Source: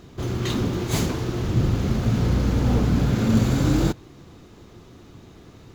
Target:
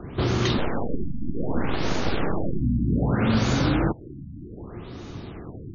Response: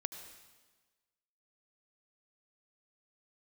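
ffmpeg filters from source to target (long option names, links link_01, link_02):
-filter_complex "[0:a]acrossover=split=160|590[link_01][link_02][link_03];[link_01]acompressor=threshold=-35dB:ratio=4[link_04];[link_02]acompressor=threshold=-34dB:ratio=4[link_05];[link_03]acompressor=threshold=-35dB:ratio=4[link_06];[link_04][link_05][link_06]amix=inputs=3:normalize=0,asettb=1/sr,asplit=3[link_07][link_08][link_09];[link_07]atrim=end=0.584[link_10];[link_08]atrim=start=0.58:end=2.61,asetpts=PTS-STARTPTS,afade=type=in:duration=0.004:curve=qsin,afade=type=out:start_time=2.026:duration=0.004:curve=qsin,aeval=exprs='abs(val(0))':channel_layout=same[link_11];[link_09]atrim=start=2.606[link_12];[link_10][link_11]acrossfade=duration=0.004:curve1=hsin:curve2=qsin[link_13];[link_13][link_12]acrossfade=duration=0.004:curve1=qsin:curve2=hsin,afftfilt=real='re*lt(b*sr/1024,290*pow(7100/290,0.5+0.5*sin(2*PI*0.64*pts/sr)))':imag='im*lt(b*sr/1024,290*pow(7100/290,0.5+0.5*sin(2*PI*0.64*pts/sr)))':win_size=1024:overlap=0.75,volume=8.5dB"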